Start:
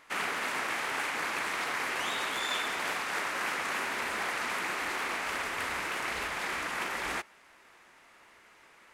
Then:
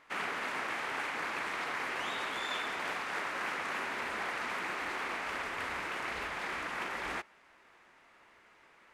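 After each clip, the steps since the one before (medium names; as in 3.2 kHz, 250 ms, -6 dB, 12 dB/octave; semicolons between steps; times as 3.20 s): treble shelf 5.8 kHz -11.5 dB; trim -2.5 dB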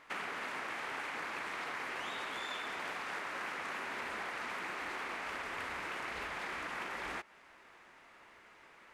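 compression 4:1, threshold -41 dBFS, peak gain reduction 8 dB; trim +2.5 dB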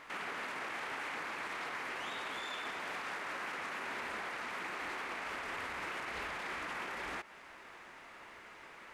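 peak limiter -38.5 dBFS, peak gain reduction 10.5 dB; trim +6 dB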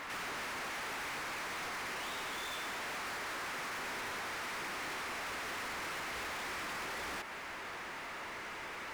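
waveshaping leveller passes 5; trim -6 dB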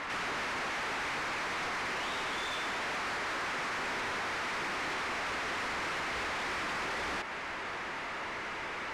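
distance through air 64 m; trim +6 dB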